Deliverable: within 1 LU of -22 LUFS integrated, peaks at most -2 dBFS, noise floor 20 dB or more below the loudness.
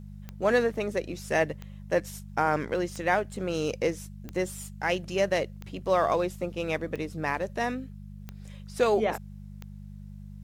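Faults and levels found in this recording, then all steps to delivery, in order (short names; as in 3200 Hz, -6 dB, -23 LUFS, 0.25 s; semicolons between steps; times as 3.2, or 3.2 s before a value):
clicks 8; hum 50 Hz; harmonics up to 200 Hz; hum level -40 dBFS; loudness -29.0 LUFS; peak -11.0 dBFS; loudness target -22.0 LUFS
-> de-click; de-hum 50 Hz, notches 4; gain +7 dB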